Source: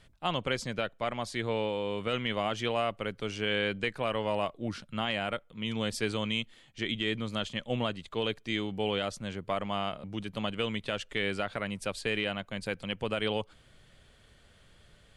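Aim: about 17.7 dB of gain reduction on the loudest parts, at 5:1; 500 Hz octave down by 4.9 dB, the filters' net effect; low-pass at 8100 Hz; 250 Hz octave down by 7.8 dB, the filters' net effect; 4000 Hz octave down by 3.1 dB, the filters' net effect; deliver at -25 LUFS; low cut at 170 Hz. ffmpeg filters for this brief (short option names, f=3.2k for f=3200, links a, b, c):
-af "highpass=170,lowpass=8.1k,equalizer=f=250:t=o:g=-7.5,equalizer=f=500:t=o:g=-4,equalizer=f=4k:t=o:g=-4.5,acompressor=threshold=-50dB:ratio=5,volume=27.5dB"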